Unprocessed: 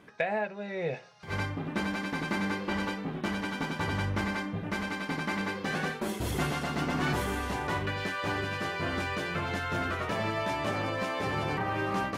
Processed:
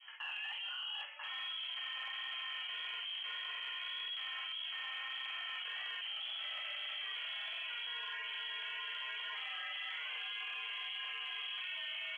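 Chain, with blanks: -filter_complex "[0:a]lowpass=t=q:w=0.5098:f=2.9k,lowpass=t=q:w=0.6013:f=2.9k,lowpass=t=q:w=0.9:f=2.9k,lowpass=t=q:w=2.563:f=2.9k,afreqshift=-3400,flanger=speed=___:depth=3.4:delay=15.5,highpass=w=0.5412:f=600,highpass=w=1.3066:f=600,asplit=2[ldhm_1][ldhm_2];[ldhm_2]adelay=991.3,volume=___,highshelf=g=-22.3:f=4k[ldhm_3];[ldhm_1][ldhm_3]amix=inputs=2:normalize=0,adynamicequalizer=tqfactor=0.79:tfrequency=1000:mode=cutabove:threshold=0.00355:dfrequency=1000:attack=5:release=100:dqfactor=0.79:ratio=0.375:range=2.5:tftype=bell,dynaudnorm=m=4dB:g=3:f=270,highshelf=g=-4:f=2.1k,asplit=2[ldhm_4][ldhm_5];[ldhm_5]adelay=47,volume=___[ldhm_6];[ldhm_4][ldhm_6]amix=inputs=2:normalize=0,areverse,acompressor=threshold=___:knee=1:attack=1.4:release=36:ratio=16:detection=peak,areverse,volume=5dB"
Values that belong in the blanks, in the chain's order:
1.7, -19dB, -2dB, -44dB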